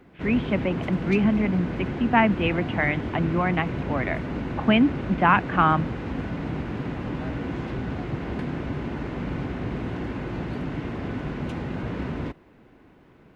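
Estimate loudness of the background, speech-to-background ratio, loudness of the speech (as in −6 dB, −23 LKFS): −31.0 LKFS, 7.0 dB, −24.0 LKFS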